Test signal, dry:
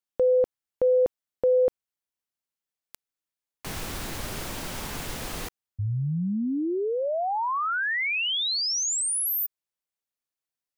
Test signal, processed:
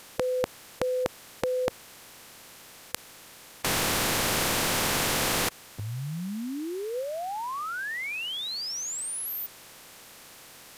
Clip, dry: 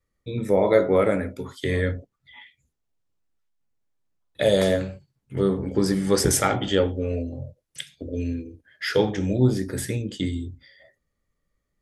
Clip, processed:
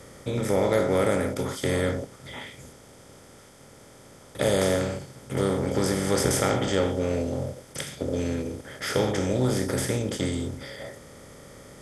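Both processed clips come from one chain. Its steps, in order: per-bin compression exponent 0.4; gain -8 dB

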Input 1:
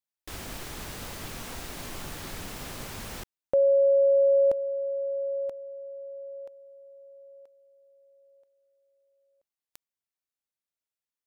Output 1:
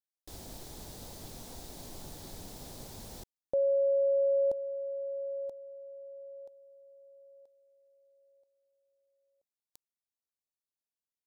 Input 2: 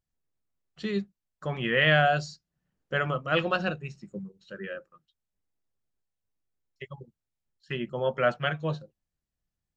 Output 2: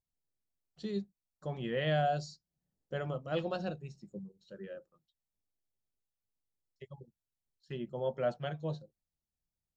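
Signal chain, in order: band shelf 1800 Hz -10.5 dB; gain -6.5 dB

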